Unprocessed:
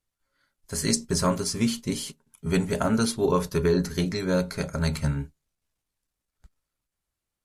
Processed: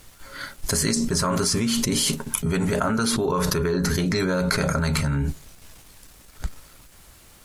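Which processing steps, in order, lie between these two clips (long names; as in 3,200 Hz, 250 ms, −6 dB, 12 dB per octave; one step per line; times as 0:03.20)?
dynamic equaliser 1,300 Hz, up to +7 dB, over −43 dBFS, Q 1.4
envelope flattener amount 100%
level −5 dB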